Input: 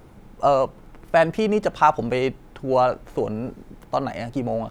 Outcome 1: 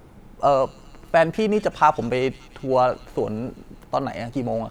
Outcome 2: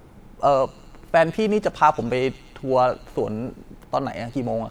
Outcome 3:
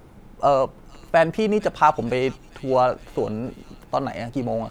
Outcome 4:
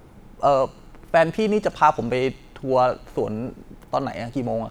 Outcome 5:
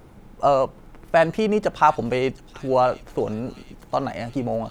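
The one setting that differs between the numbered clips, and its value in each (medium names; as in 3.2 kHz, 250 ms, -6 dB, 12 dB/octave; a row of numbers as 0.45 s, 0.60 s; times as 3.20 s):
feedback echo behind a high-pass, time: 193 ms, 116 ms, 455 ms, 62 ms, 721 ms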